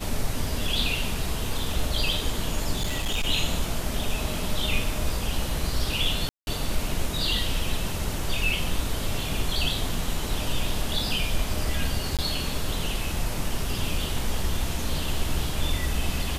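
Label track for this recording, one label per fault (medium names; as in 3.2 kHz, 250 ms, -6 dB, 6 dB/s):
2.760000	3.270000	clipped -21.5 dBFS
6.290000	6.470000	dropout 181 ms
12.170000	12.190000	dropout 17 ms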